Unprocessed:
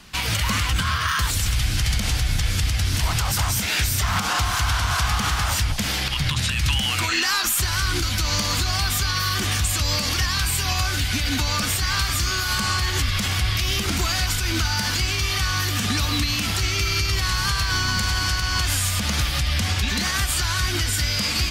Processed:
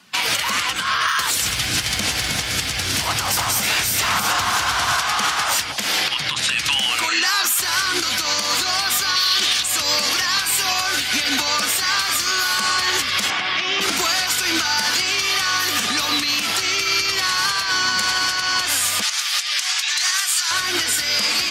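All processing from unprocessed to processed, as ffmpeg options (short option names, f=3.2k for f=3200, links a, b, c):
-filter_complex "[0:a]asettb=1/sr,asplit=3[a][b][c];[a]atrim=end=1.424[d];[b]atrim=start=1.42:end=4.99,asetpts=PTS-STARTPTS,afade=t=in:d=0.004:c=qsin,afade=t=out:st=3.566:d=0.004:c=qsin,lowshelf=f=190:g=11,acrusher=bits=9:mode=log:mix=0:aa=0.000001,aecho=1:1:314:0.531,atrim=end_sample=157437[e];[c]atrim=start=4.986[f];[d][e]acrossfade=d=0.004:c1=hsin:c2=qsin[g];[g][f]acrossfade=d=0.004:c1=qsin:c2=hsin,asettb=1/sr,asplit=3[h][i][j];[h]atrim=end=9.164[k];[i]atrim=start=9.16:end=9.63,asetpts=PTS-STARTPTS,afade=t=in:d=0.004:c=qsin,afade=t=out:st=0.466:d=0.004:c=qsin,equalizer=f=3.8k:t=o:w=1.3:g=12,aeval=exprs='clip(val(0),-1,0.282)':c=same[l];[j]atrim=start=9.626[m];[k][l]acrossfade=d=0.004:c1=hsin:c2=qsin[n];[n][m]acrossfade=d=0.004:c1=qsin:c2=hsin,asettb=1/sr,asplit=3[o][p][q];[o]atrim=end=13.304[r];[p]atrim=start=13.3:end=13.81,asetpts=PTS-STARTPTS,afade=t=in:d=0.004:c=qsin,afade=t=out:st=0.506:d=0.004:c=qsin,acrossover=split=3400[s][t];[t]acompressor=threshold=-36dB:ratio=4:attack=1:release=60[u];[s][u]amix=inputs=2:normalize=0,highpass=f=140:w=0.5412,highpass=f=140:w=1.3066,equalizer=f=470:t=q:w=4:g=-3,equalizer=f=860:t=q:w=4:g=3,equalizer=f=4.5k:t=q:w=4:g=-3,lowpass=f=8.7k:w=0.5412,lowpass=f=8.7k:w=1.3066[v];[q]atrim=start=13.806[w];[r][v]acrossfade=d=0.004:c1=hsin:c2=qsin[x];[x][w]acrossfade=d=0.004:c1=qsin:c2=hsin,asettb=1/sr,asplit=3[y][z][aa];[y]atrim=end=19.024[ab];[z]atrim=start=19.02:end=20.51,asetpts=PTS-STARTPTS,afade=t=in:d=0.004:c=qsin,afade=t=out:st=1.486:d=0.004:c=qsin,highpass=1.1k,equalizer=f=6.6k:t=o:w=1.2:g=5.5[ac];[aa]atrim=start=20.506[ad];[ab][ac]acrossfade=d=0.004:c1=hsin:c2=qsin[ae];[ae][ad]acrossfade=d=0.004:c1=qsin:c2=hsin,afftdn=nr=13:nf=-42,highpass=380,alimiter=limit=-17.5dB:level=0:latency=1:release=298,volume=8.5dB"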